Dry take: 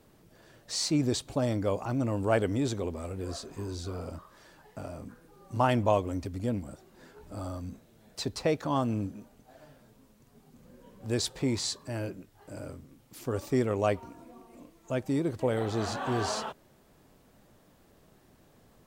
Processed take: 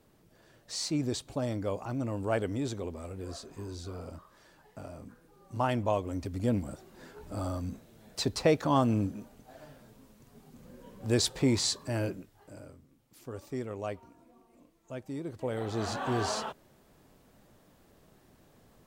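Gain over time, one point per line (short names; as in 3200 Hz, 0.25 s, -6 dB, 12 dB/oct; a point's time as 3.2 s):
5.97 s -4 dB
6.54 s +3 dB
12.1 s +3 dB
12.72 s -9.5 dB
15.16 s -9.5 dB
15.93 s -0.5 dB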